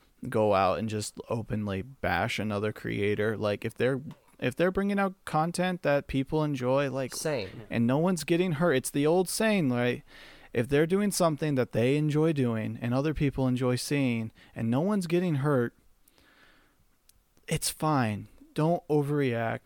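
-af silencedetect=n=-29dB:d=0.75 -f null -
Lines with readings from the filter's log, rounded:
silence_start: 15.68
silence_end: 17.49 | silence_duration: 1.82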